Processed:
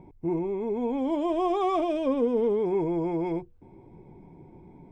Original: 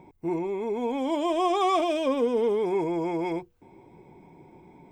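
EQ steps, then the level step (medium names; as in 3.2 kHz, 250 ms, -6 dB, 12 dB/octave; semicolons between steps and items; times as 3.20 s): tilt EQ -3 dB/octave; -4.0 dB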